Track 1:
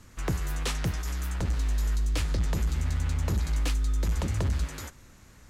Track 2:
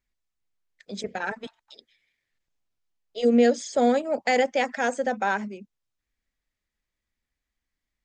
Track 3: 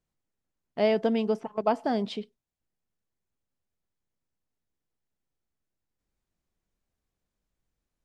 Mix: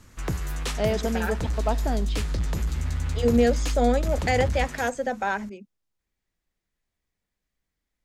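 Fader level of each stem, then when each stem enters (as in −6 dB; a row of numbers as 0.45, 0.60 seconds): +0.5, −1.5, −2.0 decibels; 0.00, 0.00, 0.00 seconds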